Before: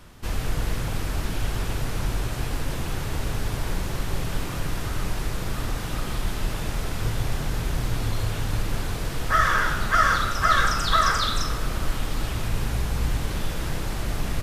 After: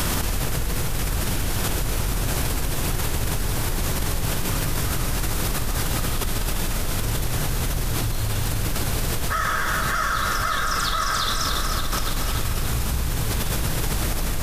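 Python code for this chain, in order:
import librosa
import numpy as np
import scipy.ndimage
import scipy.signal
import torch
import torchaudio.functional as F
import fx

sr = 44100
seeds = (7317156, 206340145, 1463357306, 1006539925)

p1 = fx.high_shelf(x, sr, hz=6000.0, db=11.5)
p2 = p1 + fx.echo_alternate(p1, sr, ms=143, hz=1500.0, feedback_pct=81, wet_db=-5, dry=0)
p3 = fx.env_flatten(p2, sr, amount_pct=100)
y = p3 * 10.0 ** (-8.5 / 20.0)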